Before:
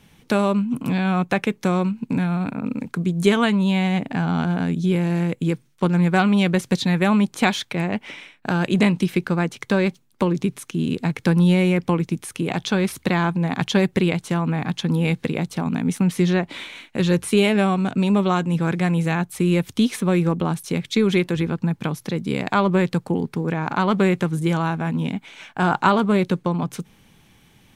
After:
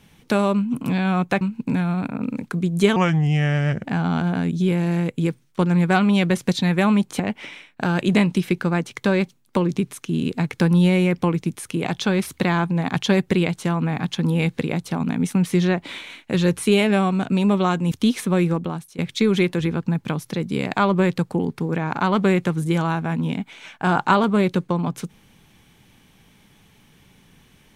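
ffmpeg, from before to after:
ffmpeg -i in.wav -filter_complex "[0:a]asplit=7[link_01][link_02][link_03][link_04][link_05][link_06][link_07];[link_01]atrim=end=1.412[link_08];[link_02]atrim=start=1.838:end=3.394[link_09];[link_03]atrim=start=3.39:end=4.08,asetpts=PTS-STARTPTS,asetrate=34398,aresample=44100[link_10];[link_04]atrim=start=4.076:end=7.432[link_11];[link_05]atrim=start=7.848:end=18.572[link_12];[link_06]atrim=start=19.668:end=20.74,asetpts=PTS-STARTPTS,afade=type=out:start_time=0.512:duration=0.56:silence=0.125893[link_13];[link_07]atrim=start=20.74,asetpts=PTS-STARTPTS,afade=type=in:duration=0.004:curve=hsin:silence=0.125893[link_14];[link_08][link_09]acrossfade=duration=0.004:curve1=hsin:curve2=hsin[link_15];[link_15][link_10]acrossfade=duration=0.004:curve1=hsin:curve2=hsin[link_16];[link_16][link_11]acrossfade=duration=0.004:curve1=hsin:curve2=hsin[link_17];[link_17][link_12]acrossfade=duration=0.004:curve1=hsin:curve2=hsin[link_18];[link_13][link_14]concat=n=2:v=0:a=1[link_19];[link_18][link_19]acrossfade=duration=0.004:curve1=hsin:curve2=hsin" out.wav

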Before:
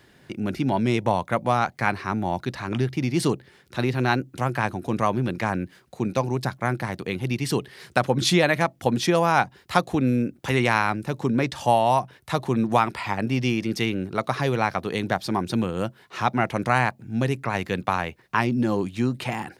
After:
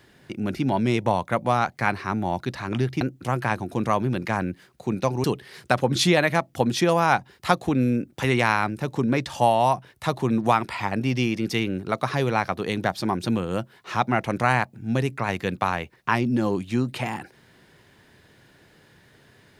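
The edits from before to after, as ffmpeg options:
ffmpeg -i in.wav -filter_complex "[0:a]asplit=3[link_01][link_02][link_03];[link_01]atrim=end=3.012[link_04];[link_02]atrim=start=4.138:end=6.372[link_05];[link_03]atrim=start=7.498[link_06];[link_04][link_05]acrossfade=duration=0.004:curve1=hsin:curve2=hsin[link_07];[link_07][link_06]acrossfade=duration=0.004:curve1=hsin:curve2=hsin" out.wav

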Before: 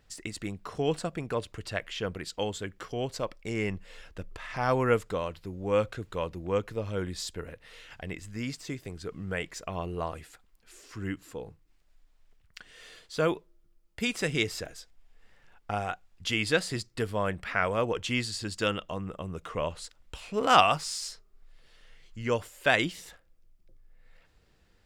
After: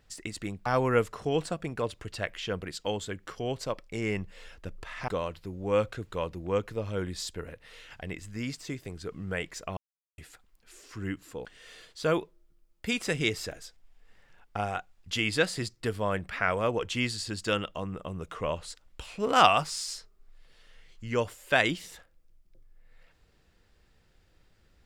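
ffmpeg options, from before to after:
ffmpeg -i in.wav -filter_complex "[0:a]asplit=7[link_01][link_02][link_03][link_04][link_05][link_06][link_07];[link_01]atrim=end=0.662[link_08];[link_02]atrim=start=4.608:end=5.082[link_09];[link_03]atrim=start=0.658:end=4.612[link_10];[link_04]atrim=start=5.078:end=9.77,asetpts=PTS-STARTPTS,afade=type=out:start_time=4.688:duration=0.004:curve=hsin[link_11];[link_05]atrim=start=9.77:end=10.18,asetpts=PTS-STARTPTS,volume=0[link_12];[link_06]atrim=start=10.18:end=11.452,asetpts=PTS-STARTPTS,afade=type=in:duration=0.004:curve=hsin[link_13];[link_07]atrim=start=12.588[link_14];[link_08][link_09]acrossfade=duration=0.004:curve1=hsin:curve2=hsin[link_15];[link_15][link_10]acrossfade=duration=0.004:curve1=hsin:curve2=hsin[link_16];[link_11][link_12][link_13]concat=n=3:v=0:a=1[link_17];[link_16][link_17]acrossfade=duration=0.004:curve1=hsin:curve2=hsin[link_18];[link_18][link_14]acrossfade=duration=0.004:curve1=hsin:curve2=hsin" out.wav

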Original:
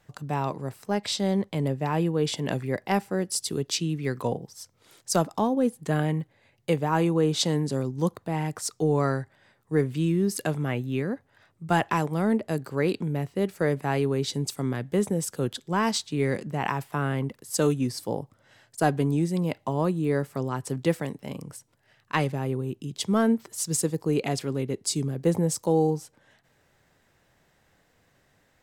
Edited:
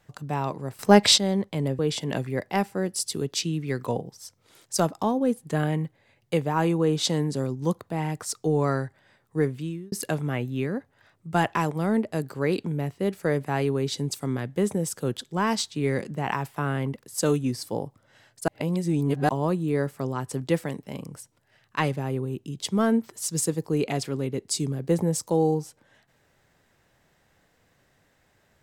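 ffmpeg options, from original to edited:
ffmpeg -i in.wav -filter_complex "[0:a]asplit=7[link_01][link_02][link_03][link_04][link_05][link_06][link_07];[link_01]atrim=end=0.792[link_08];[link_02]atrim=start=0.788:end=1.182,asetpts=PTS-STARTPTS,volume=12dB[link_09];[link_03]atrim=start=1.178:end=1.792[link_10];[link_04]atrim=start=2.148:end=10.28,asetpts=PTS-STARTPTS,afade=type=out:start_time=7.602:duration=0.53[link_11];[link_05]atrim=start=10.28:end=18.842,asetpts=PTS-STARTPTS,afade=type=in:duration=0.004:curve=hsin[link_12];[link_06]atrim=start=18.838:end=19.652,asetpts=PTS-STARTPTS,areverse[link_13];[link_07]atrim=start=19.648[link_14];[link_08][link_09]acrossfade=duration=0.004:curve1=hsin:curve2=hsin[link_15];[link_15][link_10]acrossfade=duration=0.004:curve1=hsin:curve2=hsin[link_16];[link_11][link_12]concat=n=2:v=0:a=1[link_17];[link_16][link_17]acrossfade=duration=0.004:curve1=hsin:curve2=hsin[link_18];[link_18][link_13]acrossfade=duration=0.004:curve1=hsin:curve2=hsin[link_19];[link_19][link_14]acrossfade=duration=0.004:curve1=hsin:curve2=hsin" out.wav

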